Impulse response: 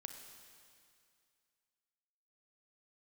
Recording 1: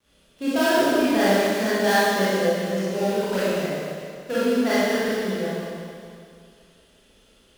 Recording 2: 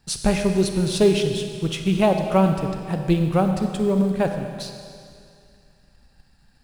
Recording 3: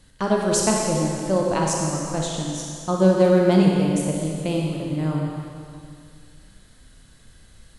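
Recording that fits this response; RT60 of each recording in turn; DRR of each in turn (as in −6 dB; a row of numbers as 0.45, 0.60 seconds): 2; 2.3, 2.3, 2.3 seconds; −11.5, 5.0, −2.0 decibels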